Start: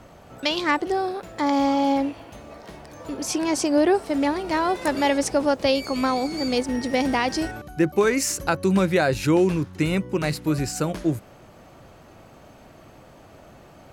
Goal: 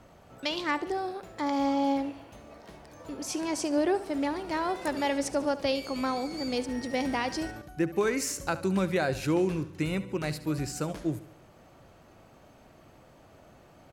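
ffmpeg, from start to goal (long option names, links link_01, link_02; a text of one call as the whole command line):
ffmpeg -i in.wav -af "aecho=1:1:72|144|216|288:0.168|0.0823|0.0403|0.0198,volume=-7.5dB" out.wav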